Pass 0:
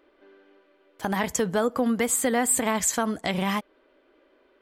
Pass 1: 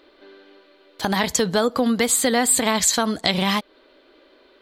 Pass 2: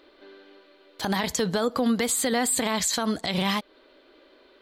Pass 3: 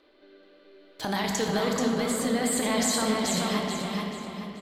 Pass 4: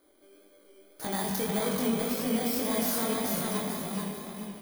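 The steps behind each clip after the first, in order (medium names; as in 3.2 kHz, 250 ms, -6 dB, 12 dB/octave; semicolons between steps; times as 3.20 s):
peaking EQ 4.1 kHz +14.5 dB 0.6 oct; in parallel at -2 dB: compression, threshold -31 dBFS, peak gain reduction 13 dB; on the sum: trim +2 dB
peak limiter -13.5 dBFS, peak gain reduction 10.5 dB; trim -2 dB
rotary cabinet horn 0.6 Hz, later 5 Hz, at 3.14 s; feedback delay 433 ms, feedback 34%, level -3.5 dB; simulated room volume 220 m³, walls hard, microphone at 0.46 m; trim -3 dB
bit-reversed sample order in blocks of 16 samples; chorus 1.8 Hz, delay 18.5 ms, depth 7.5 ms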